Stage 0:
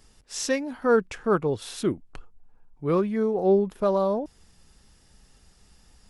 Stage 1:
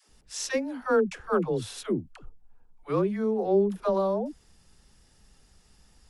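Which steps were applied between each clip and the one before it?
phase dispersion lows, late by 89 ms, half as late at 420 Hz; trim -2.5 dB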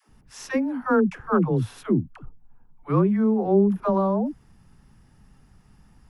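graphic EQ 125/250/500/1000/4000/8000 Hz +9/+5/-5/+4/-9/-11 dB; trim +3 dB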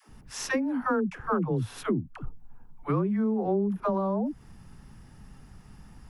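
compression 4:1, threshold -31 dBFS, peak gain reduction 14.5 dB; trim +5 dB

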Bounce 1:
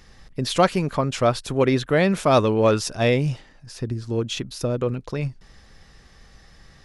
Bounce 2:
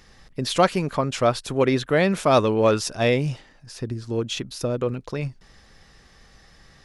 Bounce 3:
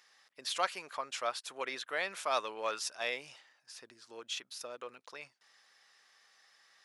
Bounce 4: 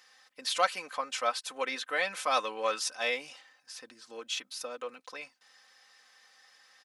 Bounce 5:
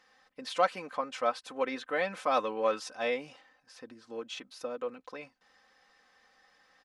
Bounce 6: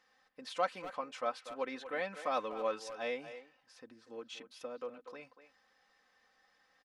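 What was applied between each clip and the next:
bass shelf 150 Hz -4.5 dB
high-pass 950 Hz 12 dB/octave; trim -9 dB
comb 3.9 ms, depth 73%; trim +3 dB
tilt EQ -4 dB/octave
speakerphone echo 240 ms, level -11 dB; trim -6.5 dB

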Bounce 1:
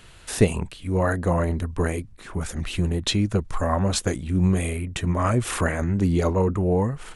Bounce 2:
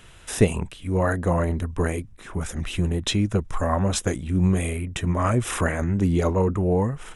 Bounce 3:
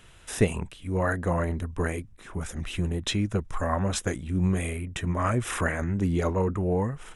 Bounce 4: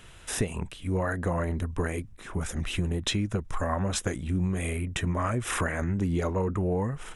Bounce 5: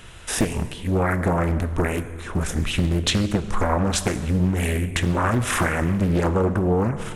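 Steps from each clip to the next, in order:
band-stop 4.4 kHz, Q 6.3
dynamic bell 1.7 kHz, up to +4 dB, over -39 dBFS, Q 1.3; trim -4.5 dB
compression 6:1, threshold -27 dBFS, peak gain reduction 11.5 dB; trim +3 dB
plate-style reverb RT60 1.7 s, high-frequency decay 0.75×, DRR 10 dB; loudspeaker Doppler distortion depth 0.96 ms; trim +7 dB

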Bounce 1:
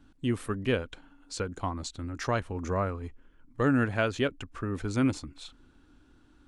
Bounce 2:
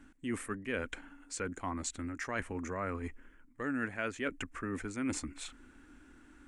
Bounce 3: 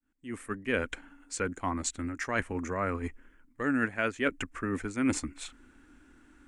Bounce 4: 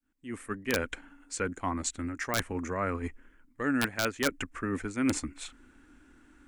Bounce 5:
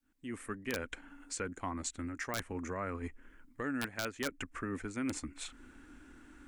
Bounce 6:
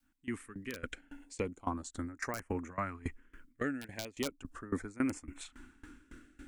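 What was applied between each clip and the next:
graphic EQ 125/250/2000/4000/8000 Hz -7/+5/+12/-8/+10 dB; reverse; compression 4:1, threshold -35 dBFS, peak gain reduction 15 dB; reverse
fade-in on the opening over 0.65 s; upward expansion 1.5:1, over -48 dBFS; trim +8 dB
integer overflow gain 17 dB
compression 2:1, threshold -45 dBFS, peak gain reduction 12 dB; trim +2.5 dB
LFO notch saw up 0.37 Hz 410–4800 Hz; sawtooth tremolo in dB decaying 3.6 Hz, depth 21 dB; trim +7.5 dB

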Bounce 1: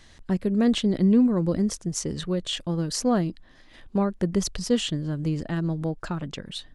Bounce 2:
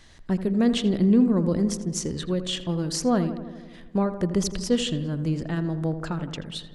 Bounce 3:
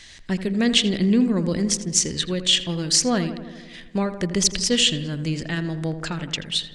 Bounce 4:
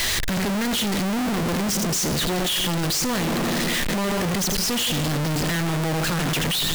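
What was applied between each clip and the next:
filtered feedback delay 82 ms, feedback 71%, low-pass 2.2 kHz, level -11 dB
high-order bell 4 kHz +12 dB 2.7 oct
one-bit comparator

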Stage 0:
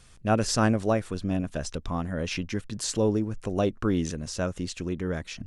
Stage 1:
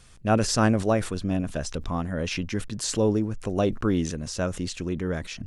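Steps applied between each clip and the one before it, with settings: decay stretcher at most 120 dB/s; trim +1.5 dB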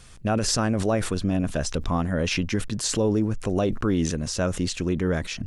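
peak limiter -18.5 dBFS, peak gain reduction 9 dB; trim +4.5 dB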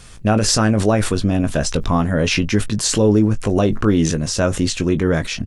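doubling 19 ms -10 dB; trim +7 dB

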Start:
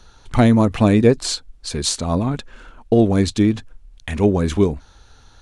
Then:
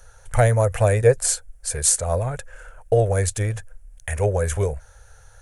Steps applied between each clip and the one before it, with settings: FFT filter 120 Hz 0 dB, 230 Hz -24 dB, 320 Hz -21 dB, 510 Hz +5 dB, 1.1 kHz -7 dB, 1.6 kHz +3 dB, 4 kHz -13 dB, 6.3 kHz +2 dB, 9.6 kHz +12 dB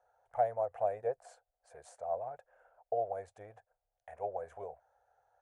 band-pass filter 730 Hz, Q 5.5; trim -5.5 dB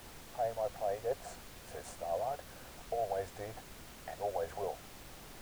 reverse; compression, threshold -40 dBFS, peak gain reduction 15 dB; reverse; added noise pink -59 dBFS; trim +7.5 dB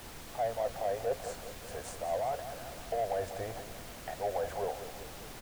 in parallel at -3.5 dB: hard clipper -38 dBFS, distortion -6 dB; on the sum: feedback delay 193 ms, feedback 56%, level -11 dB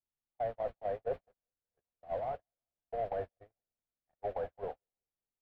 gate -33 dBFS, range -53 dB; distance through air 490 m; trim -1 dB

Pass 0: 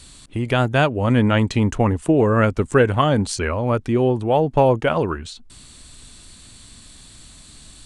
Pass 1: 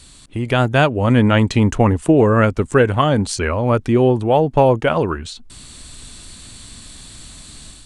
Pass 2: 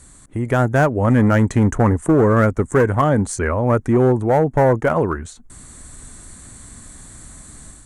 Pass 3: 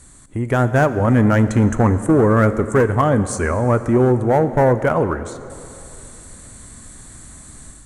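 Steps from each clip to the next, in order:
level rider gain up to 6 dB
one-sided clip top -11 dBFS, bottom -7 dBFS; high-order bell 3.6 kHz -14 dB 1.3 oct
plate-style reverb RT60 2.9 s, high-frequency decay 0.85×, DRR 11.5 dB

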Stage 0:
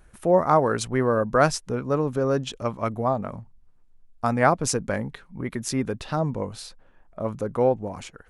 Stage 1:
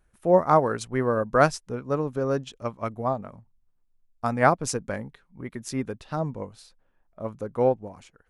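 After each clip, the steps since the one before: upward expansion 1.5:1, over -41 dBFS; trim +1 dB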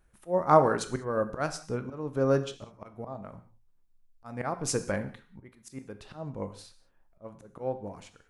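slow attack 336 ms; gated-style reverb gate 220 ms falling, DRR 9 dB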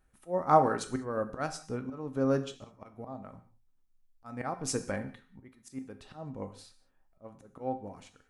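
feedback comb 260 Hz, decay 0.18 s, harmonics odd, mix 70%; trim +5.5 dB

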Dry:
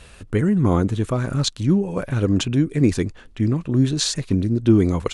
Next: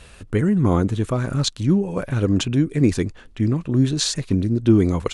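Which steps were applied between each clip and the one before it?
no audible change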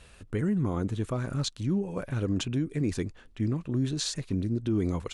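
peak limiter -11.5 dBFS, peak gain reduction 6.5 dB; trim -8.5 dB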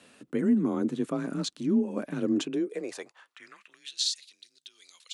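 high-pass sweep 220 Hz -> 3.8 kHz, 2.31–4.06 s; frequency shift +30 Hz; trim -1.5 dB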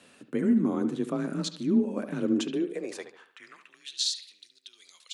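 bucket-brigade echo 72 ms, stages 2048, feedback 41%, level -11 dB; on a send at -20.5 dB: reverberation RT60 0.40 s, pre-delay 5 ms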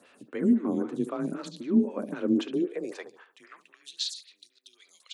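lamp-driven phase shifter 3.8 Hz; trim +2 dB

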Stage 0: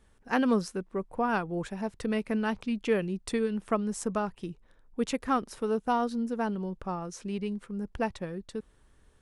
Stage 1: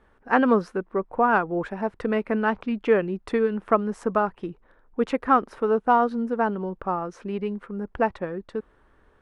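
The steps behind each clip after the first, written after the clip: FFT filter 150 Hz 0 dB, 340 Hz +7 dB, 1.4 kHz +10 dB, 7.5 kHz -13 dB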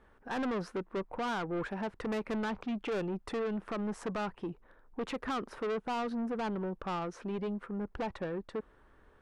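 peak limiter -16 dBFS, peak gain reduction 10.5 dB; saturation -28.5 dBFS, distortion -8 dB; trim -2.5 dB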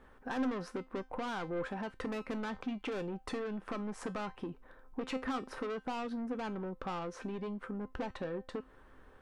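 compression, threshold -40 dBFS, peak gain reduction 7.5 dB; feedback comb 260 Hz, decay 0.24 s, harmonics all, mix 70%; trim +11.5 dB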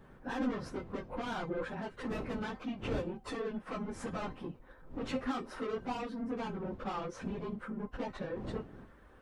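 phase randomisation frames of 50 ms; wind noise 300 Hz -49 dBFS

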